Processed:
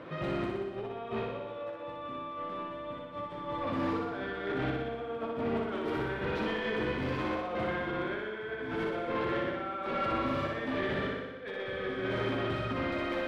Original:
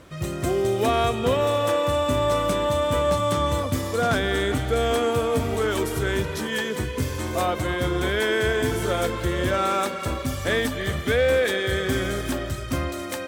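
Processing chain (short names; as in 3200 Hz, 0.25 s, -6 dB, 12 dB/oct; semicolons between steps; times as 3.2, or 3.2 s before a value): HPF 180 Hz 12 dB/oct; high shelf 11000 Hz -6.5 dB; notches 50/100/150/200/250/300/350/400/450 Hz; negative-ratio compressor -30 dBFS, ratio -0.5; soft clip -29.5 dBFS, distortion -8 dB; air absorption 380 m; flutter echo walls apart 10.4 m, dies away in 1.2 s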